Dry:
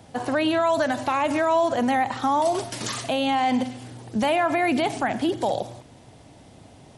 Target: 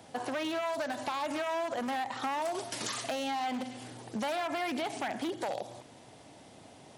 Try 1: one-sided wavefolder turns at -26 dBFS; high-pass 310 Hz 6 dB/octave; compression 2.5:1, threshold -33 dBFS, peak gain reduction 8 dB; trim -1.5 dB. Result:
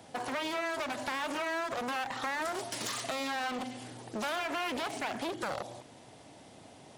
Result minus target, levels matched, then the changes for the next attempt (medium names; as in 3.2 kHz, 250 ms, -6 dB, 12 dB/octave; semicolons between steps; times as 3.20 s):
one-sided wavefolder: distortion +14 dB
change: one-sided wavefolder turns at -18.5 dBFS